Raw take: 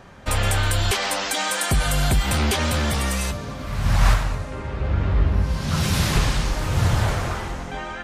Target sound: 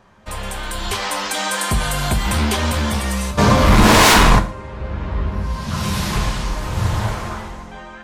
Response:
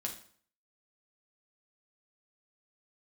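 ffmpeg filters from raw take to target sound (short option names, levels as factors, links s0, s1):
-filter_complex "[0:a]dynaudnorm=f=160:g=11:m=3.16,asplit=3[s0][s1][s2];[s0]afade=t=out:st=3.37:d=0.02[s3];[s1]aeval=exprs='0.891*sin(PI/2*8.91*val(0)/0.891)':c=same,afade=t=in:st=3.37:d=0.02,afade=t=out:st=4.38:d=0.02[s4];[s2]afade=t=in:st=4.38:d=0.02[s5];[s3][s4][s5]amix=inputs=3:normalize=0,asplit=2[s6][s7];[s7]equalizer=f=1000:w=3.8:g=9[s8];[1:a]atrim=start_sample=2205,afade=t=out:st=0.21:d=0.01,atrim=end_sample=9702[s9];[s8][s9]afir=irnorm=-1:irlink=0,volume=1.19[s10];[s6][s10]amix=inputs=2:normalize=0,volume=0.224"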